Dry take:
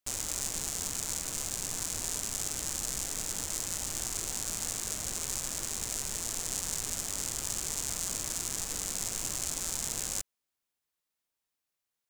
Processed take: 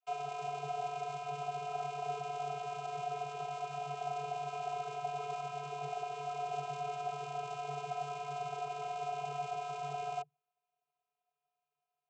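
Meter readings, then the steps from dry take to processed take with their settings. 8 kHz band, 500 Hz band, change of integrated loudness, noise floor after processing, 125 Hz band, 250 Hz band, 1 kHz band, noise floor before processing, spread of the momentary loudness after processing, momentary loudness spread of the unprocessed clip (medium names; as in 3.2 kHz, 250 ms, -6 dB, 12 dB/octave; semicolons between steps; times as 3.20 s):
-28.0 dB, +7.5 dB, -7.0 dB, under -85 dBFS, -3.0 dB, no reading, +12.0 dB, under -85 dBFS, 2 LU, 1 LU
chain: vowel filter a; vocoder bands 32, square 144 Hz; trim +18 dB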